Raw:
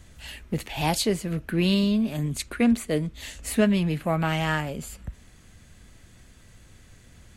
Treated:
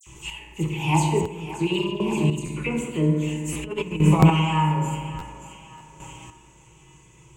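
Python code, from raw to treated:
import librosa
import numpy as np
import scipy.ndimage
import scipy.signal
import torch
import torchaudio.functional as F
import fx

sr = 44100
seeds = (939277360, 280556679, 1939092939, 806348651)

p1 = fx.spec_quant(x, sr, step_db=15)
p2 = fx.rev_fdn(p1, sr, rt60_s=1.6, lf_ratio=1.3, hf_ratio=0.4, size_ms=10.0, drr_db=-1.0)
p3 = fx.level_steps(p2, sr, step_db=11, at=(1.2, 2.44))
p4 = fx.highpass(p3, sr, hz=110.0, slope=6)
p5 = fx.dispersion(p4, sr, late='lows', ms=65.0, hz=2900.0)
p6 = fx.over_compress(p5, sr, threshold_db=-23.0, ratio=-0.5, at=(3.43, 4.19), fade=0.02)
p7 = fx.ripple_eq(p6, sr, per_octave=0.71, db=18)
p8 = p7 + fx.echo_thinned(p7, sr, ms=578, feedback_pct=41, hz=300.0, wet_db=-13.5, dry=0)
p9 = fx.dynamic_eq(p8, sr, hz=5700.0, q=1.0, threshold_db=-44.0, ratio=4.0, max_db=-6)
p10 = fx.chopper(p9, sr, hz=0.5, depth_pct=60, duty_pct=15)
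p11 = fx.buffer_glitch(p10, sr, at_s=(1.22, 2.45, 3.52, 4.19, 5.18, 5.77), block=512, repeats=2)
y = p11 * librosa.db_to_amplitude(4.5)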